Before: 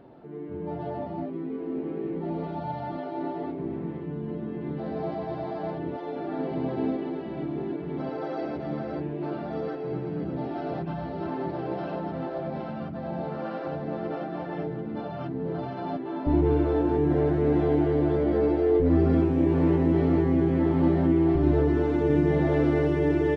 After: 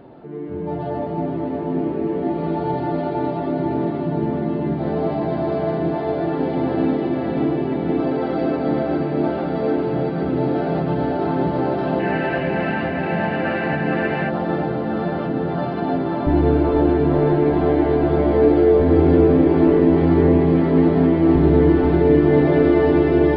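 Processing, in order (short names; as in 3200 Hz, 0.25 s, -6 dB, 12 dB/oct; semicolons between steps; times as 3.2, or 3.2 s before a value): downsampling 11025 Hz; in parallel at +2.5 dB: limiter -18.5 dBFS, peak gain reduction 8.5 dB; on the sum: diffused feedback echo 0.505 s, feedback 76%, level -3.5 dB; spectral gain 12–14.3, 1500–3000 Hz +12 dB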